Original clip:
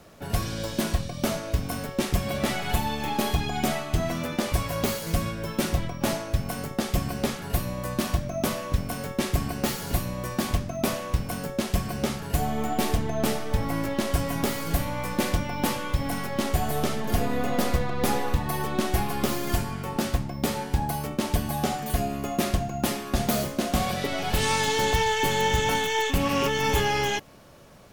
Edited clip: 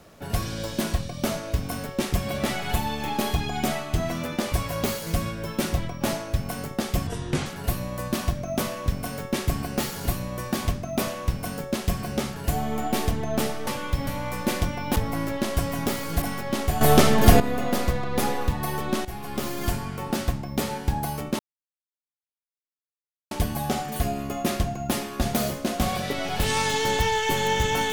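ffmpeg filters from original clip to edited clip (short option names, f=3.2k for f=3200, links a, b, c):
-filter_complex "[0:a]asplit=11[a][b][c][d][e][f][g][h][i][j][k];[a]atrim=end=7.074[l];[b]atrim=start=7.07:end=7.32,asetpts=PTS-STARTPTS,asetrate=28224,aresample=44100[m];[c]atrim=start=7.316:end=13.532[n];[d]atrim=start=15.678:end=16.082[o];[e]atrim=start=14.788:end=15.682[p];[f]atrim=start=13.528:end=14.792[q];[g]atrim=start=16.078:end=16.672[r];[h]atrim=start=16.668:end=17.262,asetpts=PTS-STARTPTS,volume=10.5dB[s];[i]atrim=start=17.258:end=18.91,asetpts=PTS-STARTPTS,afade=t=out:st=1.648:d=0.004:c=hsin:silence=0.199526[t];[j]atrim=start=18.91:end=21.25,asetpts=PTS-STARTPTS,afade=t=in:d=0.85:c=qsin:silence=0.199526,afade=t=out:st=2.336:d=0.004:c=hsin,apad=pad_dur=1.92[u];[k]atrim=start=21.25,asetpts=PTS-STARTPTS,afade=t=in:d=0.004:c=hsin[v];[l][m]acrossfade=d=0.004:c1=hsin:c2=hsin[w];[w][n]acrossfade=d=0.004:c1=hsin:c2=hsin[x];[x][o]acrossfade=d=0.004:c1=hsin:c2=hsin[y];[y][p]acrossfade=d=0.004:c1=hsin:c2=hsin[z];[z][q]acrossfade=d=0.004:c1=hsin:c2=hsin[aa];[aa][r]acrossfade=d=0.004:c1=hsin:c2=hsin[ab];[ab][s]acrossfade=d=0.004:c1=hsin:c2=hsin[ac];[t][u][v]concat=n=3:v=0:a=1[ad];[ac][ad]acrossfade=d=0.004:c1=hsin:c2=hsin"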